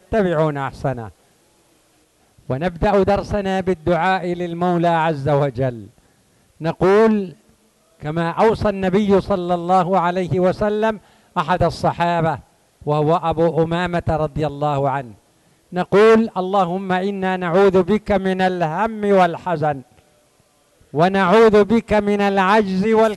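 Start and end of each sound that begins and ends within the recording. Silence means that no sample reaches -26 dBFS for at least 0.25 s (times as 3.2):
2.49–5.8
6.61–7.29
8.03–10.96
11.36–12.36
12.87–15.01
15.73–19.79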